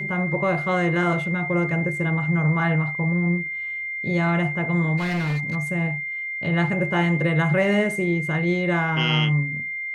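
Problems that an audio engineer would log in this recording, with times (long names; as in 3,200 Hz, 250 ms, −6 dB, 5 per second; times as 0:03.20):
whistle 2,100 Hz −27 dBFS
0:04.97–0:05.56: clipping −21 dBFS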